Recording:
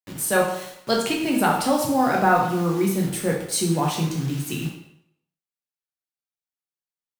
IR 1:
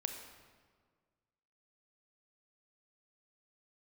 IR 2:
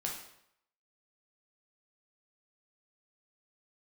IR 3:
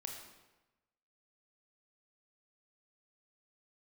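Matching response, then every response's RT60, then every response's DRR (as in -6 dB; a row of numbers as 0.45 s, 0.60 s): 2; 1.7 s, 0.75 s, 1.1 s; 5.0 dB, -1.5 dB, 1.5 dB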